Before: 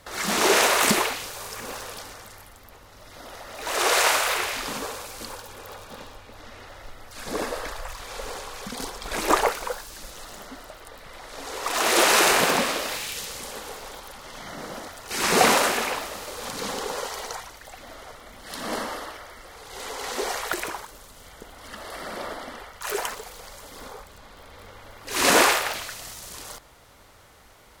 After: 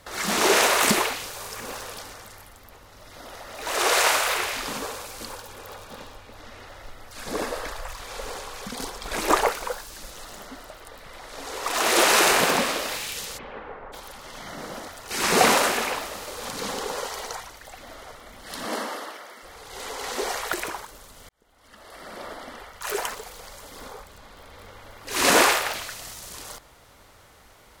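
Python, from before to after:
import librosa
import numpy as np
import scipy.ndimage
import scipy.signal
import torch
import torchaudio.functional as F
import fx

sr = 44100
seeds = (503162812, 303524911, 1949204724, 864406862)

y = fx.lowpass(x, sr, hz=fx.line((13.37, 2900.0), (13.92, 1700.0)), slope=24, at=(13.37, 13.92), fade=0.02)
y = fx.highpass(y, sr, hz=190.0, slope=24, at=(18.65, 19.43))
y = fx.edit(y, sr, fx.fade_in_span(start_s=21.29, length_s=1.52), tone=tone)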